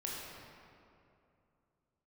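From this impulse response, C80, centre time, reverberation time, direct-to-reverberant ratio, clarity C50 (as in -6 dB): 0.0 dB, 0.141 s, 2.6 s, -4.5 dB, -2.0 dB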